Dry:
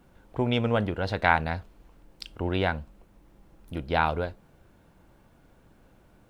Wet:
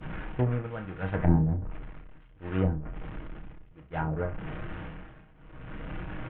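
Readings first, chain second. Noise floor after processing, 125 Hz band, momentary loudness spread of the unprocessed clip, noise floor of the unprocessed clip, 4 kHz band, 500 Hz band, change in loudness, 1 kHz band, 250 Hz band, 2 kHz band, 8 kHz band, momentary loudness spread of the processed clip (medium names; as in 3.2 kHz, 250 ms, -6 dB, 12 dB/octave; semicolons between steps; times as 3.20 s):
-54 dBFS, +3.5 dB, 15 LU, -60 dBFS, under -15 dB, -5.5 dB, -3.5 dB, -10.5 dB, +0.5 dB, -11.5 dB, no reading, 21 LU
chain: one-bit delta coder 16 kbps, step -26 dBFS; comb 6.4 ms, depth 38%; dynamic bell 1.5 kHz, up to +6 dB, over -42 dBFS, Q 1.4; expander -21 dBFS; tremolo 0.66 Hz, depth 90%; low-pass that closes with the level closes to 310 Hz, closed at -27.5 dBFS; bass shelf 270 Hz +11 dB; flutter echo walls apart 5.5 m, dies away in 0.22 s; trim +2 dB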